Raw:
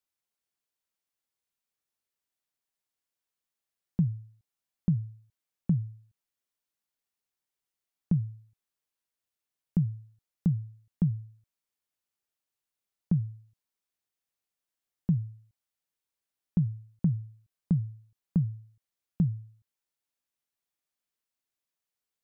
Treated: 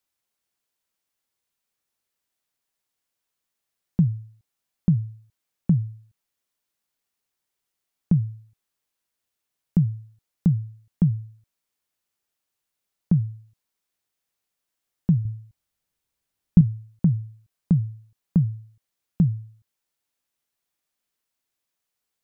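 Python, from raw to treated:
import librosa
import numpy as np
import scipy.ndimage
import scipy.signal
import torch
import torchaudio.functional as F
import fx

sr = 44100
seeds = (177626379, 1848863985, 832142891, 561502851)

y = fx.low_shelf(x, sr, hz=170.0, db=11.5, at=(15.25, 16.61))
y = y * 10.0 ** (6.5 / 20.0)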